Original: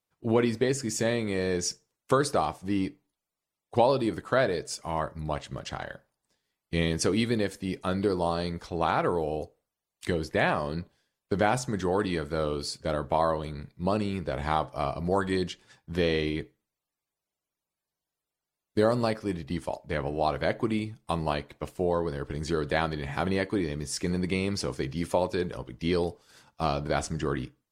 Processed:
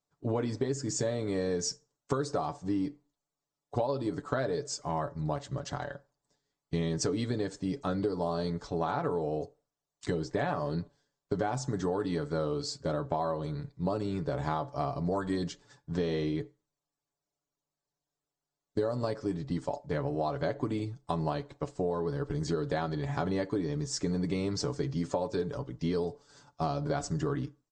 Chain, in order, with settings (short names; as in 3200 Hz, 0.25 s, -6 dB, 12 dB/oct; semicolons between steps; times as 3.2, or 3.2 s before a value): steep low-pass 8100 Hz 72 dB/oct; bell 2500 Hz -11 dB 1.1 oct; comb 7 ms, depth 58%; compressor 6:1, threshold -27 dBFS, peak gain reduction 11 dB